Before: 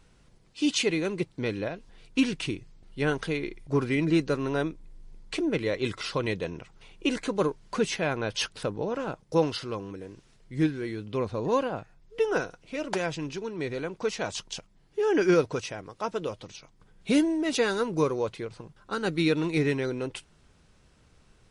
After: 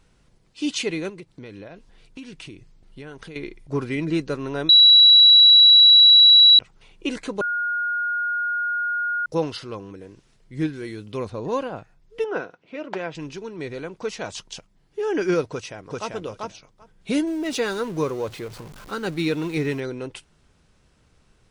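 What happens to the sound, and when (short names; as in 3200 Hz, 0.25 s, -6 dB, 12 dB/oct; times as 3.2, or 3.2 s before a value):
1.09–3.36 compressor, threshold -36 dBFS
4.69–6.59 bleep 3910 Hz -8 dBFS
7.41–9.26 bleep 1430 Hz -21.5 dBFS
10.73–11.3 high shelf 5600 Hz +10.5 dB
12.24–13.15 BPF 180–2900 Hz
15.51–16.13 echo throw 0.39 s, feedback 10%, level -1 dB
17.27–19.8 zero-crossing step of -38 dBFS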